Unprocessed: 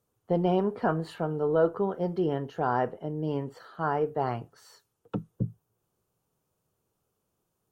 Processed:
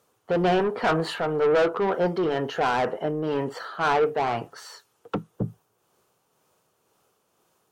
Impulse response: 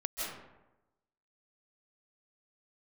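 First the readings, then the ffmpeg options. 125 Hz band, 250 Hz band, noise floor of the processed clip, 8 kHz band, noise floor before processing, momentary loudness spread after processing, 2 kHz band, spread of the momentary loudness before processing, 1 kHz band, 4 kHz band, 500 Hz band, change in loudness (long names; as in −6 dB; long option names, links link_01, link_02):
−0.5 dB, +2.0 dB, −71 dBFS, can't be measured, −80 dBFS, 12 LU, +10.5 dB, 10 LU, +5.5 dB, +13.5 dB, +5.0 dB, +4.5 dB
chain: -filter_complex "[0:a]asplit=2[link_01][link_02];[link_02]highpass=frequency=720:poles=1,volume=23dB,asoftclip=type=tanh:threshold=-12.5dB[link_03];[link_01][link_03]amix=inputs=2:normalize=0,lowpass=frequency=4900:poles=1,volume=-6dB,tremolo=f=2:d=0.33"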